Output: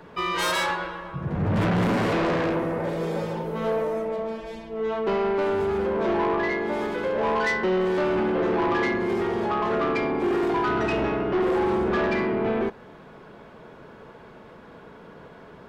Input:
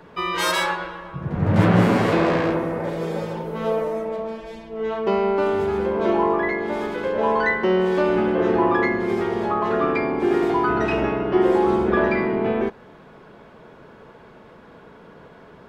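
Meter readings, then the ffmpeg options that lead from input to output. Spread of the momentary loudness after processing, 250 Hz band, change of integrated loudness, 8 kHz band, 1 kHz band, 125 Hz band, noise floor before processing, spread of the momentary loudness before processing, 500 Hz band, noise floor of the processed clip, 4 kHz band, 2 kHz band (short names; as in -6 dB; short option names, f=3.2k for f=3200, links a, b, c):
6 LU, -4.0 dB, -3.5 dB, n/a, -3.5 dB, -5.0 dB, -47 dBFS, 10 LU, -3.5 dB, -47 dBFS, -2.0 dB, -3.0 dB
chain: -af "asoftclip=type=tanh:threshold=-19dB"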